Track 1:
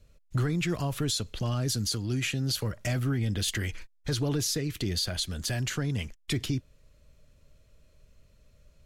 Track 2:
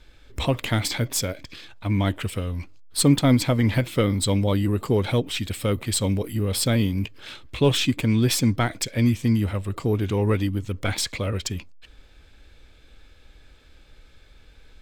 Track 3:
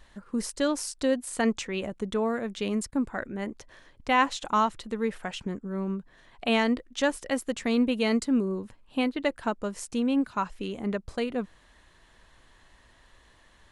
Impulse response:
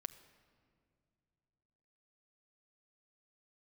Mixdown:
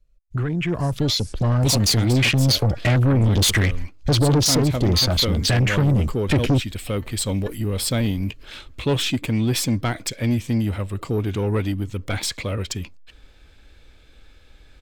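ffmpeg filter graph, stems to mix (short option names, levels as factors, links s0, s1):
-filter_complex "[0:a]afwtdn=0.0126,dynaudnorm=f=670:g=5:m=4.47,volume=1.33,asplit=2[s0][s1];[1:a]adelay=1250,volume=0.631[s2];[2:a]highpass=950,adelay=400,volume=0.237[s3];[s1]apad=whole_len=622368[s4];[s3][s4]sidechaingate=range=0.0794:threshold=0.01:ratio=16:detection=peak[s5];[s0][s2][s5]amix=inputs=3:normalize=0,dynaudnorm=f=130:g=9:m=1.78,asoftclip=type=tanh:threshold=0.211"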